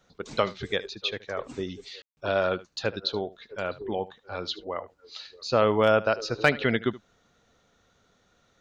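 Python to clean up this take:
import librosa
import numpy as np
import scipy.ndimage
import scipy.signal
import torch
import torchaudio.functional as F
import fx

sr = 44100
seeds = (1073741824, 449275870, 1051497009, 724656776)

y = fx.fix_declip(x, sr, threshold_db=-8.5)
y = fx.fix_ambience(y, sr, seeds[0], print_start_s=8.07, print_end_s=8.57, start_s=2.02, end_s=2.17)
y = fx.fix_echo_inverse(y, sr, delay_ms=75, level_db=-18.5)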